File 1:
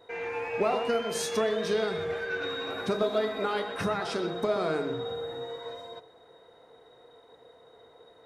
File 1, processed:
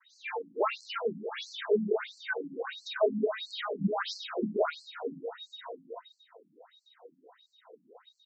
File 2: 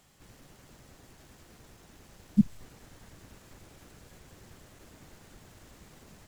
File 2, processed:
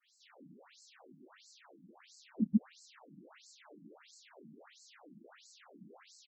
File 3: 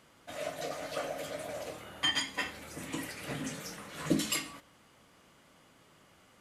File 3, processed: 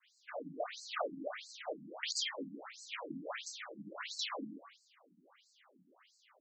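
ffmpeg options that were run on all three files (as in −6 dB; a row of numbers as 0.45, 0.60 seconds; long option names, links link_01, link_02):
-filter_complex "[0:a]acrossover=split=5900[link_01][link_02];[link_02]acompressor=threshold=-57dB:ratio=4:attack=1:release=60[link_03];[link_01][link_03]amix=inputs=2:normalize=0,agate=range=-33dB:threshold=-58dB:ratio=3:detection=peak,asplit=2[link_04][link_05];[link_05]adelay=27,volume=-10.5dB[link_06];[link_04][link_06]amix=inputs=2:normalize=0,acrossover=split=650|1400[link_07][link_08][link_09];[link_09]aeval=exprs='(mod(28.2*val(0)+1,2)-1)/28.2':channel_layout=same[link_10];[link_07][link_08][link_10]amix=inputs=3:normalize=0,asplit=2[link_11][link_12];[link_12]adelay=163.3,volume=-8dB,highshelf=frequency=4000:gain=-3.67[link_13];[link_11][link_13]amix=inputs=2:normalize=0,afftfilt=real='re*between(b*sr/1024,210*pow(5900/210,0.5+0.5*sin(2*PI*1.5*pts/sr))/1.41,210*pow(5900/210,0.5+0.5*sin(2*PI*1.5*pts/sr))*1.41)':imag='im*between(b*sr/1024,210*pow(5900/210,0.5+0.5*sin(2*PI*1.5*pts/sr))/1.41,210*pow(5900/210,0.5+0.5*sin(2*PI*1.5*pts/sr))*1.41)':win_size=1024:overlap=0.75,volume=4.5dB"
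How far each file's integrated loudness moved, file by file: −3.0, −5.5, −6.0 LU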